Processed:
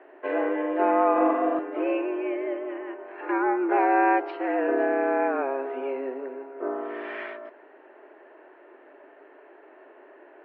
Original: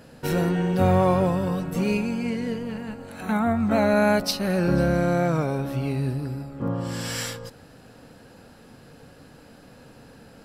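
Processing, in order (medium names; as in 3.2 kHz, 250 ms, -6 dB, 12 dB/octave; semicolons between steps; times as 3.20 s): mistuned SSB +130 Hz 200–2300 Hz; 1.12–1.59 s: flutter echo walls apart 7 m, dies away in 1 s; MP3 40 kbps 16 kHz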